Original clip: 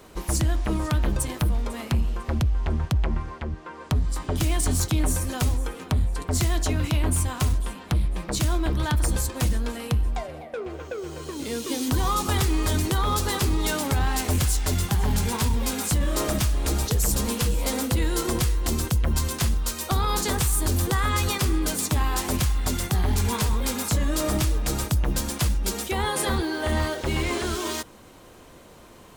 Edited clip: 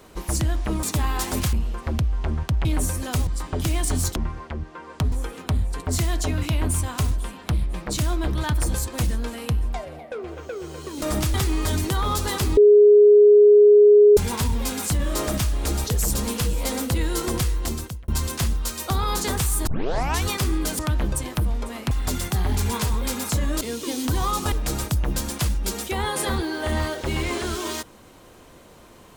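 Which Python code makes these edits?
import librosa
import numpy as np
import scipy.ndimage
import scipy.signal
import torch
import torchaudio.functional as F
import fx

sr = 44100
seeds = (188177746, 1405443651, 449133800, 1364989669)

y = fx.edit(x, sr, fx.swap(start_s=0.83, length_s=1.12, other_s=21.8, other_length_s=0.7),
    fx.swap(start_s=3.07, length_s=0.96, other_s=4.92, other_length_s=0.62),
    fx.swap(start_s=11.44, length_s=0.91, other_s=24.2, other_length_s=0.32),
    fx.bleep(start_s=13.58, length_s=1.6, hz=415.0, db=-8.5),
    fx.fade_out_span(start_s=18.6, length_s=0.49),
    fx.tape_start(start_s=20.68, length_s=0.59), tone=tone)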